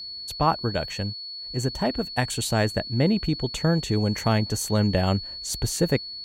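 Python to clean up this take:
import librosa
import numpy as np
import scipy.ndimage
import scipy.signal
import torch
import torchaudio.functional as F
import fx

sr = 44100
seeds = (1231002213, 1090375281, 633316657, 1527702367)

y = fx.notch(x, sr, hz=4400.0, q=30.0)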